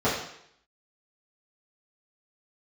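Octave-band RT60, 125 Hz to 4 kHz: 0.65 s, 0.65 s, 0.70 s, 0.70 s, 0.75 s, 0.70 s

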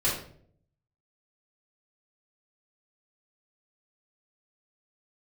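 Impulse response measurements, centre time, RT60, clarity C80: 42 ms, 0.60 s, 8.5 dB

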